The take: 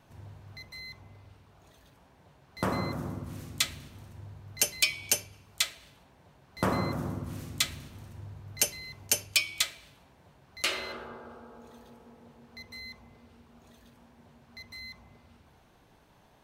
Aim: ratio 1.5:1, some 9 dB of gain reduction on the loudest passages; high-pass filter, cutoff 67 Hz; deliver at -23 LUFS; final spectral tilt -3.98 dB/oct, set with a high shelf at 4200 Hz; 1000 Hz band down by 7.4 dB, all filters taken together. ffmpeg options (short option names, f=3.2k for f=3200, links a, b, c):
-af "highpass=67,equalizer=f=1k:t=o:g=-9,highshelf=f=4.2k:g=-9,acompressor=threshold=-53dB:ratio=1.5,volume=22.5dB"